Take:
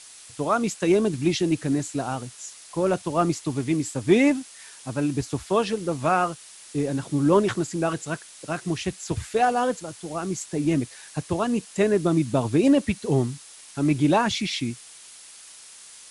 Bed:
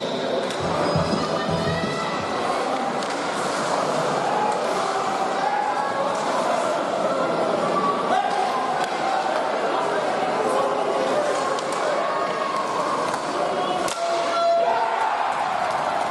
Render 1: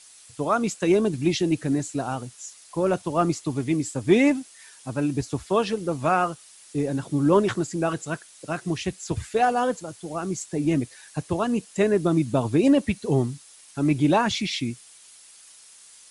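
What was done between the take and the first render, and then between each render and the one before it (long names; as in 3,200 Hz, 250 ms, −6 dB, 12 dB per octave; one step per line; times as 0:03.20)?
broadband denoise 6 dB, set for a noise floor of −46 dBFS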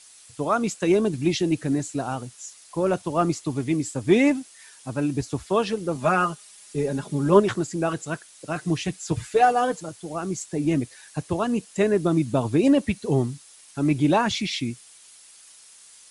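0:05.95–0:07.40: comb filter 4.9 ms
0:08.55–0:09.89: comb filter 6.6 ms, depth 60%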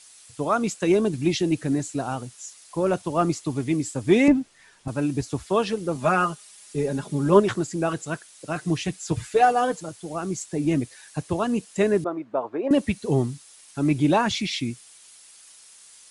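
0:04.28–0:04.88: RIAA equalisation playback
0:12.04–0:12.71: flat-topped band-pass 830 Hz, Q 0.75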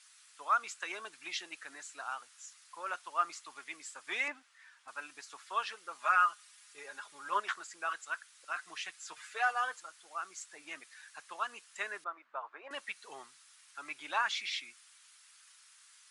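Chebyshev high-pass filter 1,300 Hz, order 3
spectral tilt −4 dB per octave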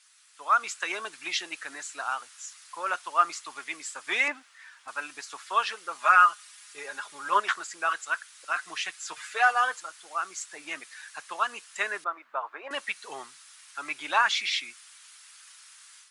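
automatic gain control gain up to 9 dB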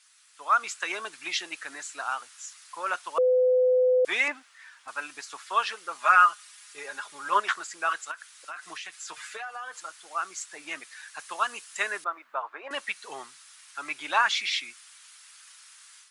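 0:03.18–0:04.05: beep over 506 Hz −18 dBFS
0:08.11–0:09.82: downward compressor, threshold −35 dBFS
0:11.19–0:12.42: high-shelf EQ 6,100 Hz +6.5 dB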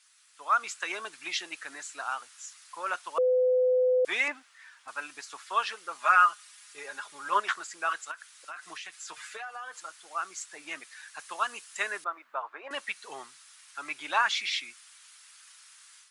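level −2.5 dB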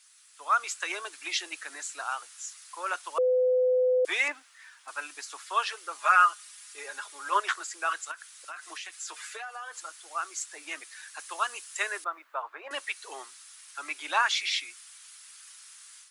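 Butterworth high-pass 290 Hz 48 dB per octave
high-shelf EQ 6,000 Hz +7.5 dB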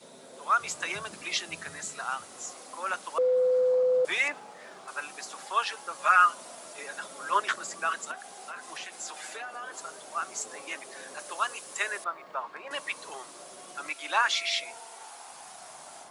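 mix in bed −26 dB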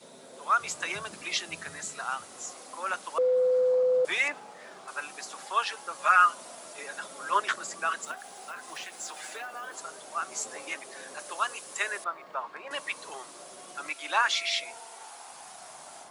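0:08.03–0:09.75: one scale factor per block 5 bits
0:10.30–0:10.74: double-tracking delay 13 ms −4 dB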